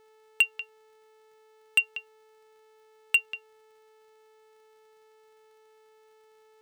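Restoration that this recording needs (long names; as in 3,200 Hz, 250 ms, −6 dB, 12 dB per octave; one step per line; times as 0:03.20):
clipped peaks rebuilt −14 dBFS
click removal
hum removal 436.3 Hz, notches 22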